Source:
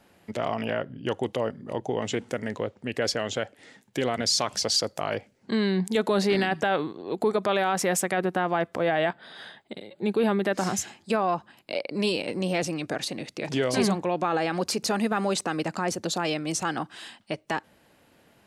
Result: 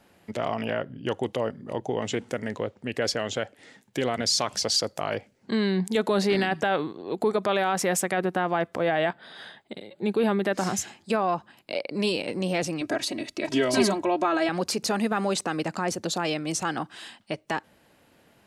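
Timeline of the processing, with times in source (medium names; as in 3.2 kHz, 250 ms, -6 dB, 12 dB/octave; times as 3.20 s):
12.81–14.49 s: comb 3.1 ms, depth 86%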